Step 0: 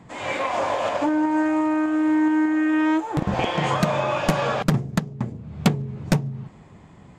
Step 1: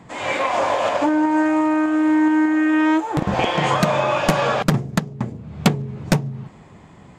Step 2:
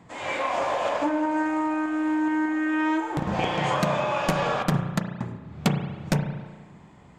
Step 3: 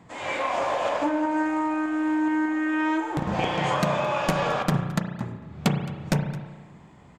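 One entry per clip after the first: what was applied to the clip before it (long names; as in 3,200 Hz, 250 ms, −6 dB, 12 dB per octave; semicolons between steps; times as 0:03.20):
low-shelf EQ 230 Hz −4 dB; level +4.5 dB
convolution reverb RT60 1.3 s, pre-delay 34 ms, DRR 5.5 dB; level −7 dB
single-tap delay 217 ms −19.5 dB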